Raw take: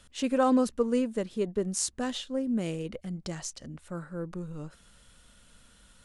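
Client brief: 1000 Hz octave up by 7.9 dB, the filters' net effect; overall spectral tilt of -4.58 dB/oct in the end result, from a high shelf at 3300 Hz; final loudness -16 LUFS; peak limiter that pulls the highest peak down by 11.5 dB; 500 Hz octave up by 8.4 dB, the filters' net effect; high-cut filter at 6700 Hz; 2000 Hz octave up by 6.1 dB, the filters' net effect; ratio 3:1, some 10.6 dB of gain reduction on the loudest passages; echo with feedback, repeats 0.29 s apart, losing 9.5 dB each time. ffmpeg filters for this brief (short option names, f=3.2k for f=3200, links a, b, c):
-af "lowpass=6.7k,equalizer=f=500:t=o:g=7.5,equalizer=f=1k:t=o:g=6.5,equalizer=f=2k:t=o:g=3.5,highshelf=f=3.3k:g=5.5,acompressor=threshold=-27dB:ratio=3,alimiter=level_in=0.5dB:limit=-24dB:level=0:latency=1,volume=-0.5dB,aecho=1:1:290|580|870|1160:0.335|0.111|0.0365|0.012,volume=18dB"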